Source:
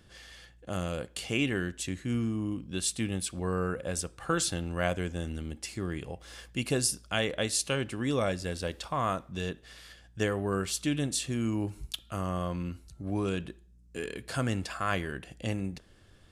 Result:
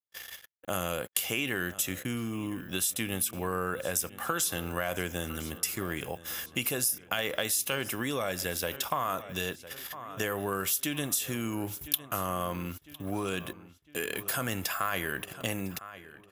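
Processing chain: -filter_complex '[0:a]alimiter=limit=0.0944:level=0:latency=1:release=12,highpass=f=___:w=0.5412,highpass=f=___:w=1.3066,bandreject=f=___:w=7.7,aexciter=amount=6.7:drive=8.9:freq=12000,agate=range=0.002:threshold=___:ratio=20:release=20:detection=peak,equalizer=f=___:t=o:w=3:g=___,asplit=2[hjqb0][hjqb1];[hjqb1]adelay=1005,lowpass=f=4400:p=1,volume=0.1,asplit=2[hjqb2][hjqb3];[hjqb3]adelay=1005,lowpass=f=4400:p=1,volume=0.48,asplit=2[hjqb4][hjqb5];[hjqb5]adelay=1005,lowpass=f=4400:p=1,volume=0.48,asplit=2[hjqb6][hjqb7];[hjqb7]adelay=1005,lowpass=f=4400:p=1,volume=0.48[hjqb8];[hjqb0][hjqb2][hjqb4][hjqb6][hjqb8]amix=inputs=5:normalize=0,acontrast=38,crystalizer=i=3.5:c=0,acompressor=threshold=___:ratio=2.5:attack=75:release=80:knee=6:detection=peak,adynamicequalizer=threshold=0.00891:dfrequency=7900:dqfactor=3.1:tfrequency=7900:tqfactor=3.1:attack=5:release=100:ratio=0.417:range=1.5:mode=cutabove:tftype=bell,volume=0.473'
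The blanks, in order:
73, 73, 4400, 0.00178, 1100, 9, 0.0251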